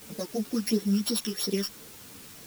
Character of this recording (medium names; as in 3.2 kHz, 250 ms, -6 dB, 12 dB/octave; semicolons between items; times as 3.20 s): a buzz of ramps at a fixed pitch in blocks of 8 samples; phasing stages 12, 2.9 Hz, lowest notch 670–2500 Hz; a quantiser's noise floor 8-bit, dither triangular; a shimmering, thickened sound